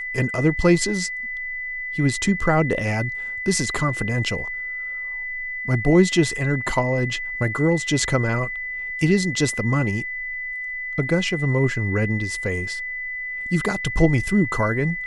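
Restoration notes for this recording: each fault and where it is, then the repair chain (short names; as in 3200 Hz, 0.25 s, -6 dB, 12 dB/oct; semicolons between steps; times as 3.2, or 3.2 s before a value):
tone 2000 Hz -27 dBFS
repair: notch 2000 Hz, Q 30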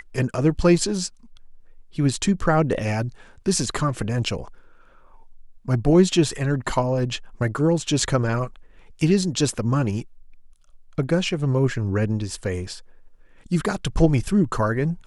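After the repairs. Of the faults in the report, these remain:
none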